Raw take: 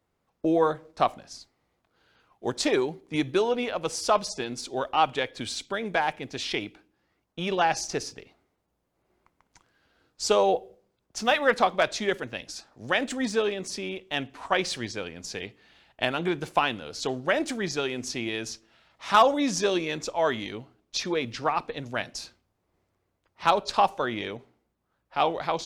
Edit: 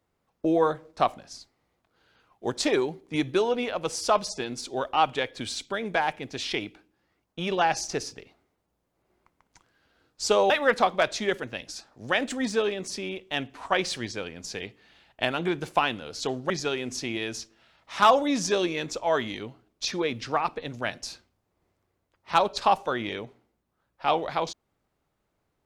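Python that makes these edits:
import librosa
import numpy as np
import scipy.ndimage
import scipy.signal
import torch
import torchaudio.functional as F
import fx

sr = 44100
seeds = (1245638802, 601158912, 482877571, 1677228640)

y = fx.edit(x, sr, fx.cut(start_s=10.5, length_s=0.8),
    fx.cut(start_s=17.3, length_s=0.32), tone=tone)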